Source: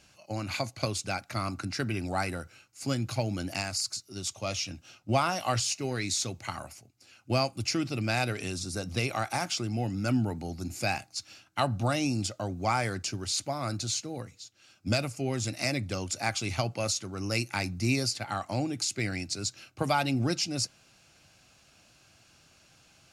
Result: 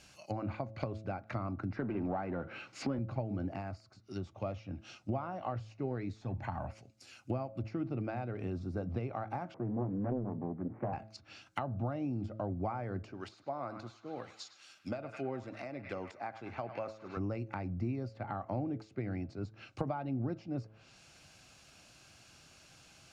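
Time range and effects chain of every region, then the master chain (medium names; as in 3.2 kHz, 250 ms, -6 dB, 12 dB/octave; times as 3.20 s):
1.76–2.99 s: band-pass 170–3400 Hz + power-law waveshaper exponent 0.7
6.21–6.71 s: companding laws mixed up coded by mu + comb 1.2 ms, depth 47%
9.54–10.93 s: median filter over 25 samples + Chebyshev band-pass 110–2100 Hz, order 4 + loudspeaker Doppler distortion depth 0.96 ms
13.12–17.17 s: high-pass 300 Hz 6 dB/octave + bass shelf 420 Hz -5.5 dB + band-passed feedback delay 102 ms, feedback 73%, band-pass 1.7 kHz, level -11 dB
whole clip: de-hum 108.8 Hz, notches 6; compression 10:1, threshold -32 dBFS; low-pass that closes with the level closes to 960 Hz, closed at -35 dBFS; trim +1 dB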